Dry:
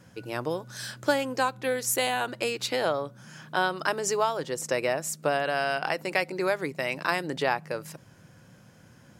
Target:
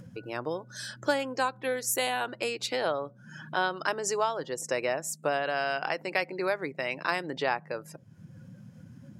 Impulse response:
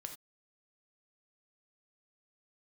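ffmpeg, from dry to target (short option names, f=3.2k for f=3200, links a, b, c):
-af "afftdn=nr=20:nf=-46,lowshelf=f=140:g=-7.5,acompressor=mode=upward:threshold=-33dB:ratio=2.5,volume=-2dB"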